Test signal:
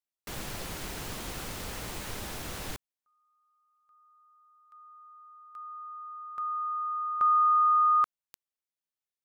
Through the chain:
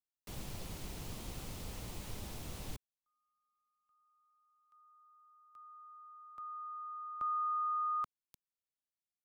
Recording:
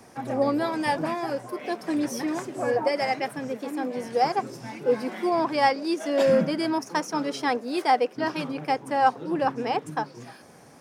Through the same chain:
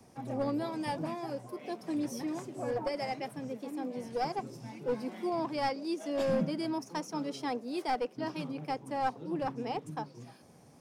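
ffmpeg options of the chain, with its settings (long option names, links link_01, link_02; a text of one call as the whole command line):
ffmpeg -i in.wav -filter_complex "[0:a]equalizer=frequency=1600:width_type=o:width=0.8:gain=-6.5,acrossover=split=220|2000[link_01][link_02][link_03];[link_01]acontrast=59[link_04];[link_02]aeval=exprs='clip(val(0),-1,0.0841)':channel_layout=same[link_05];[link_04][link_05][link_03]amix=inputs=3:normalize=0,volume=-9dB" out.wav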